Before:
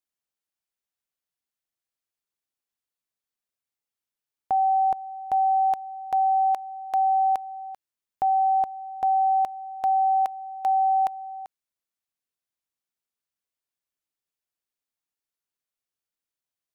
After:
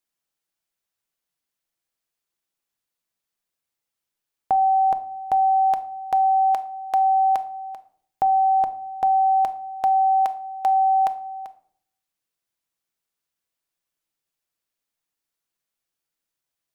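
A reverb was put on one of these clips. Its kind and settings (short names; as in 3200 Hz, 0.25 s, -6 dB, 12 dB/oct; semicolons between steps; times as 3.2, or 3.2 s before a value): shoebox room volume 880 m³, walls furnished, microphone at 0.71 m; gain +5 dB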